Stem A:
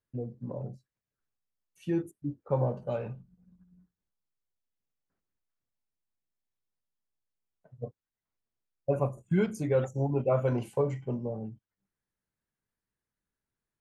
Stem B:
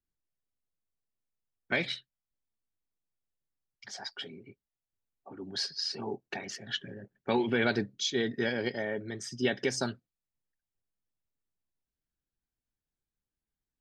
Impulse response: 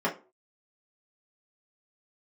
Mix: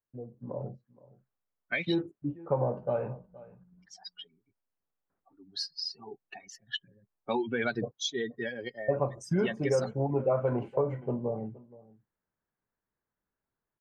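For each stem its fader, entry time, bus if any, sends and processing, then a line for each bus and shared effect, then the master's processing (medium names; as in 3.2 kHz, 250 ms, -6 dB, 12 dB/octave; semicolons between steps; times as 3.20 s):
-2.0 dB, 0.00 s, no send, echo send -21 dB, low-pass 1.3 kHz 12 dB/octave; bass shelf 360 Hz -9 dB; level rider gain up to 9 dB
+2.0 dB, 0.00 s, no send, no echo send, expander on every frequency bin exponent 2; tone controls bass -4 dB, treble -1 dB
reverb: none
echo: delay 470 ms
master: compression 3:1, threshold -24 dBFS, peak gain reduction 6 dB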